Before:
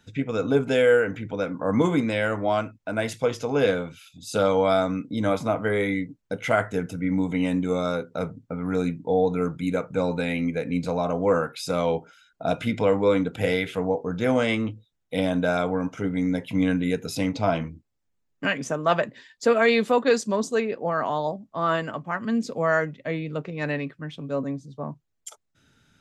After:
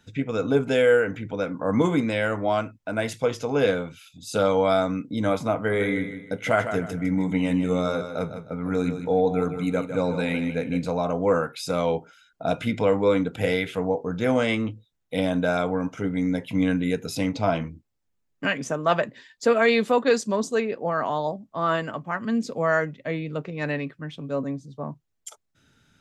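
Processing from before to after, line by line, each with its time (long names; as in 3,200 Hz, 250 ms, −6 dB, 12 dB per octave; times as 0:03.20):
0:05.56–0:10.84: repeating echo 155 ms, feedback 33%, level −9 dB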